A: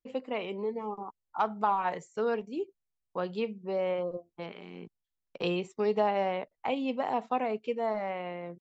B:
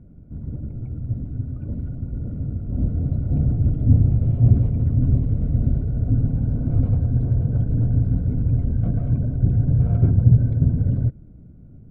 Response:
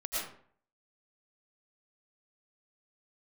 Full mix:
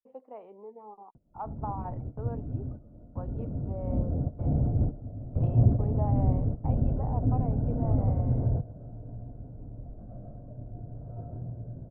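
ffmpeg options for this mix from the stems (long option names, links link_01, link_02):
-filter_complex "[0:a]volume=-12dB,asplit=2[link_01][link_02];[1:a]adelay=1150,volume=-0.5dB,asplit=2[link_03][link_04];[link_04]volume=-18.5dB[link_05];[link_02]apad=whole_len=575642[link_06];[link_03][link_06]sidechaingate=range=-33dB:threshold=-60dB:ratio=16:detection=peak[link_07];[2:a]atrim=start_sample=2205[link_08];[link_05][link_08]afir=irnorm=-1:irlink=0[link_09];[link_01][link_07][link_09]amix=inputs=3:normalize=0,lowpass=frequency=800:width_type=q:width=1.9,lowshelf=frequency=320:gain=-8"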